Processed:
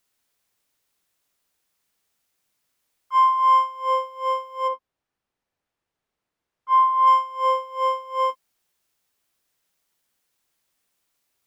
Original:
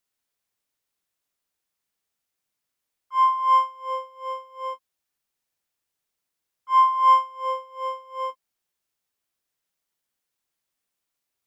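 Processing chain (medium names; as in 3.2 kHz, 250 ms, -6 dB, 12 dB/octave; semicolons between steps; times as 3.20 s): 4.67–7.06 s: low-pass 1 kHz -> 1.5 kHz 6 dB/octave; compression 3:1, threshold -24 dBFS, peak gain reduction 9 dB; trim +8 dB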